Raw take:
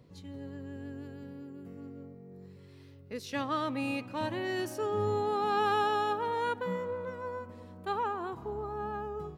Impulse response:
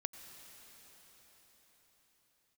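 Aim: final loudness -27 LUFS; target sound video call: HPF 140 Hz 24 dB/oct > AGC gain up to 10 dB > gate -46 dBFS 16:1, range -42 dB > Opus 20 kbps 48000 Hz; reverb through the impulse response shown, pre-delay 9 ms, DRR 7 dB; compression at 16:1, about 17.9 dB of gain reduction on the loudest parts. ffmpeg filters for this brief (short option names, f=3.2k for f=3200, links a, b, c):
-filter_complex "[0:a]acompressor=threshold=-42dB:ratio=16,asplit=2[a][b];[1:a]atrim=start_sample=2205,adelay=9[c];[b][c]afir=irnorm=-1:irlink=0,volume=-5.5dB[d];[a][d]amix=inputs=2:normalize=0,highpass=f=140:w=0.5412,highpass=f=140:w=1.3066,dynaudnorm=m=10dB,agate=range=-42dB:threshold=-46dB:ratio=16,volume=20.5dB" -ar 48000 -c:a libopus -b:a 20k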